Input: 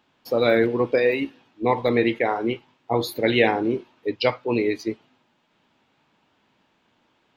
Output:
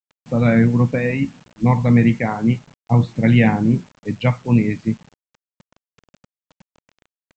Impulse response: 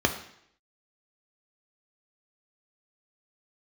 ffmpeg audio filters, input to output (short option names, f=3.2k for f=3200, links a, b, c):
-af "lowpass=f=2.7k:w=0.5412,lowpass=f=2.7k:w=1.3066,lowshelf=f=260:t=q:w=3:g=13,aresample=16000,acrusher=bits=7:mix=0:aa=0.000001,aresample=44100,volume=1.5dB"